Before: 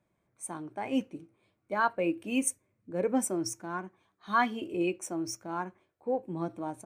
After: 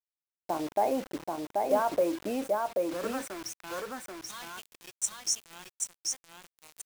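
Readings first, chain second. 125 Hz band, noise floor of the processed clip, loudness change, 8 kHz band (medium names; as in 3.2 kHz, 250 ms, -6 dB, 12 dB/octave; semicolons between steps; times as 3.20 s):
-9.0 dB, under -85 dBFS, +0.5 dB, +3.5 dB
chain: bass shelf 500 Hz +4.5 dB; in parallel at +3 dB: level held to a coarse grid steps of 19 dB; on the sum: waveshaping leveller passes 1; peak limiter -19 dBFS, peak gain reduction 8 dB; band-pass sweep 650 Hz -> 7 kHz, 2.55–4.26 s; word length cut 8-bit, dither none; on a send: delay 783 ms -3 dB; on the sum: trim +5.5 dB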